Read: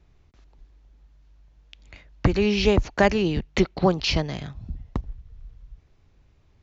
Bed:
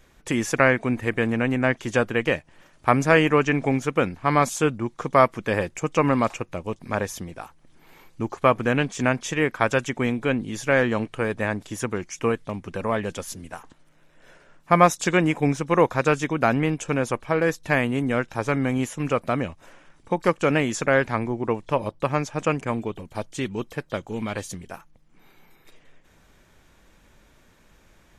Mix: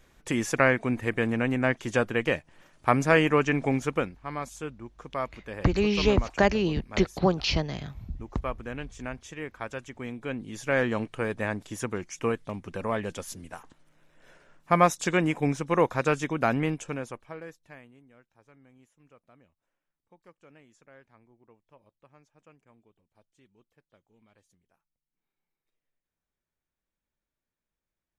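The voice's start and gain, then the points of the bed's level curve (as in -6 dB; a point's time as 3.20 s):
3.40 s, -3.0 dB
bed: 3.95 s -3.5 dB
4.17 s -15 dB
9.90 s -15 dB
10.83 s -4.5 dB
16.70 s -4.5 dB
18.09 s -34.5 dB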